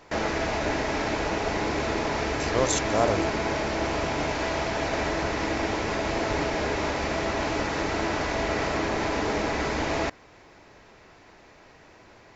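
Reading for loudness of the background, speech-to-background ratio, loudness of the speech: -27.5 LUFS, -0.5 dB, -28.0 LUFS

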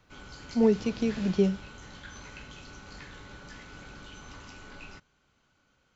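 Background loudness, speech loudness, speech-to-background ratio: -45.5 LUFS, -27.5 LUFS, 18.0 dB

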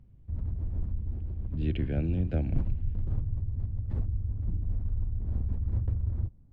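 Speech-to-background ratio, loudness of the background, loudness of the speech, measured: 1.5 dB, -34.5 LUFS, -33.0 LUFS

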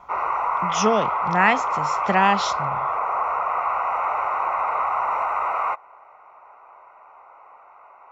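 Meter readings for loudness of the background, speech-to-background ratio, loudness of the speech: -23.5 LUFS, 1.5 dB, -22.0 LUFS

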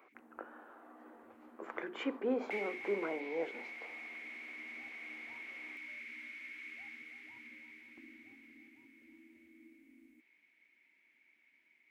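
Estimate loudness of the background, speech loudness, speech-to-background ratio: -46.0 LUFS, -40.0 LUFS, 6.0 dB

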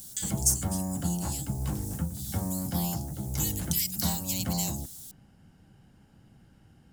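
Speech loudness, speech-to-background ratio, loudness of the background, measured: -32.0 LUFS, 1.5 dB, -33.5 LUFS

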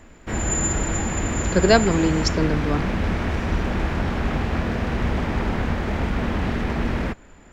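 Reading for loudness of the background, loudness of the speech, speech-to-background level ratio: -24.5 LUFS, -21.5 LUFS, 3.0 dB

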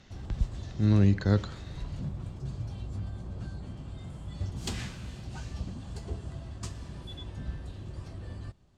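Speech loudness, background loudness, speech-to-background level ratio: -27.0 LUFS, -40.0 LUFS, 13.0 dB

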